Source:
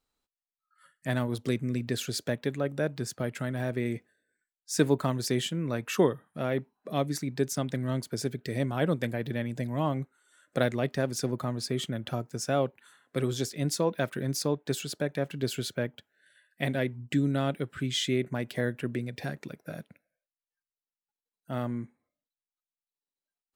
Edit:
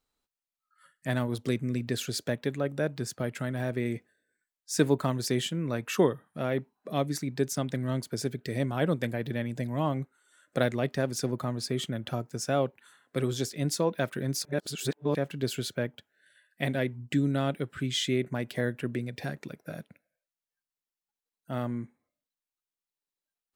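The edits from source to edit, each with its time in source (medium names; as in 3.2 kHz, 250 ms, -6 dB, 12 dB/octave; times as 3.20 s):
14.45–15.15 s: reverse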